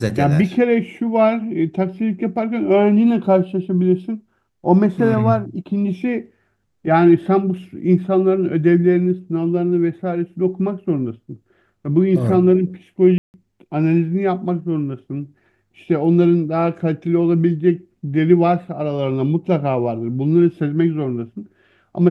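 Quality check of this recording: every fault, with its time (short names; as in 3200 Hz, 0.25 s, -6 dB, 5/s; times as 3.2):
13.18–13.34 gap 0.159 s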